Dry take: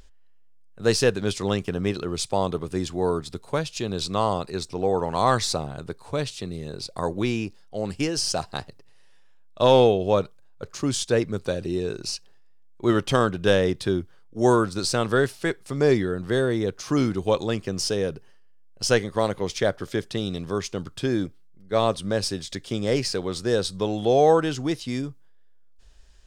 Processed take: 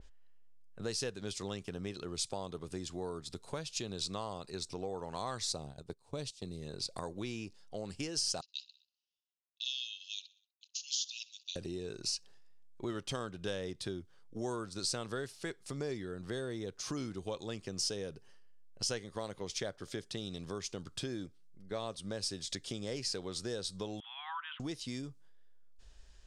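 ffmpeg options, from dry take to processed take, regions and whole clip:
-filter_complex "[0:a]asettb=1/sr,asplit=3[a][b][c];[a]atrim=end=5.524[d];[b]atrim=start=5.52:end=6.62,asetpts=PTS-STARTPTS,afade=t=in:d=0.004:c=qsin,afade=t=out:st=1.096:d=0.004:c=qsin,agate=range=-15dB:threshold=-35dB:ratio=16:release=100:detection=peak,equalizer=f=1.6k:t=o:w=1.7:g=-6.5[e];[c]atrim=start=6.616[f];[d][e]acrossfade=d=0.004:c1=hsin:c2=qsin[g];[g][f]acrossfade=d=0.004:c1=qsin:c2=hsin,asettb=1/sr,asplit=3[h][i][j];[h]atrim=end=8.414[k];[i]atrim=start=8.41:end=11.56,asetpts=PTS-STARTPTS,afade=t=in:d=0.004:c=qsin,afade=t=out:st=3.146:d=0.004:c=qsin,agate=range=-22dB:threshold=-41dB:ratio=16:release=100:detection=peak,asuperpass=centerf=4300:order=20:qfactor=1,aecho=1:1:62|124|186|248:0.0708|0.0418|0.0246|0.0145,atrim=end_sample=138915[l];[j]atrim=start=11.556[m];[k][l]acrossfade=d=0.004:c1=hsin:c2=qsin[n];[n][m]acrossfade=d=0.004:c1=qsin:c2=hsin,asettb=1/sr,asplit=3[o][p][q];[o]atrim=end=24.004[r];[p]atrim=start=24:end=24.6,asetpts=PTS-STARTPTS,afade=t=in:d=0.004:c=qsin,afade=t=out:st=0.596:d=0.004:c=qsin,asuperpass=centerf=1800:order=20:qfactor=0.71,aemphasis=mode=reproduction:type=50fm[s];[q]atrim=start=24.596[t];[r][s]acrossfade=d=0.004:c1=hsin:c2=qsin[u];[u][t]acrossfade=d=0.004:c1=qsin:c2=hsin,lowpass=9.8k,acompressor=threshold=-37dB:ratio=3,adynamicequalizer=threshold=0.00178:dfrequency=3300:dqfactor=0.7:tfrequency=3300:tqfactor=0.7:attack=5:release=100:ratio=0.375:range=4:mode=boostabove:tftype=highshelf,volume=-4dB"

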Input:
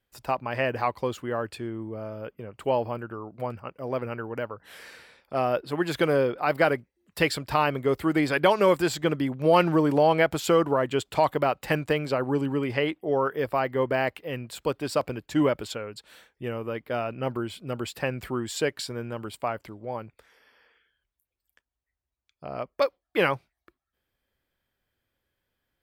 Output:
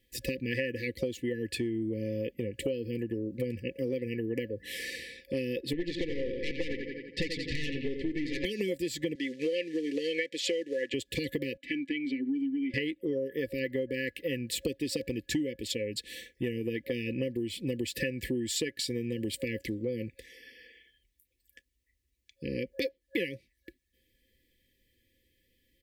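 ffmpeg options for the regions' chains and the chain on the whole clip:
-filter_complex "[0:a]asettb=1/sr,asplit=3[a][b][c];[a]atrim=end=5.734[d];[b]atrim=start=5.73:end=8.45,asetpts=PTS-STARTPTS,afade=t=in:d=0.004:c=qsin,afade=t=out:st=2.716:d=0.004:c=qsin,lowpass=f=5.1k:w=0.5412,lowpass=f=5.1k:w=1.3066,aecho=1:1:86|172|258|344|430|516:0.422|0.215|0.11|0.0559|0.0285|0.0145,atrim=end_sample=119952,aeval=exprs='(tanh(12.6*val(0)+0.75)-tanh(0.75))/12.6':c=same[e];[c]atrim=start=8.446[f];[d][e]acrossfade=d=0.004:c1=hsin:c2=qsin[g];[g][f]acrossfade=d=0.004:c1=qsin:c2=hsin,asettb=1/sr,asplit=3[h][i][j];[h]atrim=end=9.154[k];[i]atrim=start=9.15:end=10.94,asetpts=PTS-STARTPTS,afade=t=in:d=0.004:c=qsin,afade=t=out:st=1.786:d=0.004:c=qsin,acrusher=bits=7:mode=log:mix=0:aa=0.000001,acontrast=26,highpass=540,lowpass=5.1k[l];[j]atrim=start=10.936[m];[k][l]acrossfade=d=0.004:c1=hsin:c2=qsin[n];[n][m]acrossfade=d=0.004:c1=qsin:c2=hsin,asettb=1/sr,asplit=3[o][p][q];[o]atrim=end=11.574[r];[p]atrim=start=11.57:end=12.74,asetpts=PTS-STARTPTS,afade=t=in:d=0.004:c=qsin,afade=t=out:st=1.166:d=0.004:c=qsin,asplit=3[s][t][u];[s]bandpass=f=270:t=q:w=8,volume=0dB[v];[t]bandpass=f=2.29k:t=q:w=8,volume=-6dB[w];[u]bandpass=f=3.01k:t=q:w=8,volume=-9dB[x];[v][w][x]amix=inputs=3:normalize=0,equalizer=f=260:w=0.31:g=-4,aecho=1:1:3:0.36,atrim=end_sample=51597[y];[q]atrim=start=12.736[z];[r][y]acrossfade=d=0.004:c1=hsin:c2=qsin[aa];[aa][z]acrossfade=d=0.004:c1=qsin:c2=hsin,afftfilt=real='re*(1-between(b*sr/4096,540,1700))':imag='im*(1-between(b*sr/4096,540,1700))':win_size=4096:overlap=0.75,aecho=1:1:3.5:0.39,acompressor=threshold=-37dB:ratio=16,volume=8.5dB"

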